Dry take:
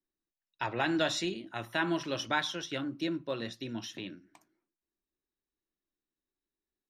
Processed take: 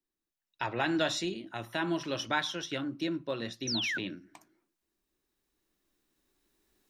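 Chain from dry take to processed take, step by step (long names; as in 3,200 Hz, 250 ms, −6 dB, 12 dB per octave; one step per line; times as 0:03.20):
camcorder AGC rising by 5.6 dB per second
0:01.12–0:02.03: dynamic equaliser 1,700 Hz, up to −4 dB, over −42 dBFS, Q 0.91
0:03.67–0:03.98: sound drawn into the spectrogram fall 1,400–6,200 Hz −33 dBFS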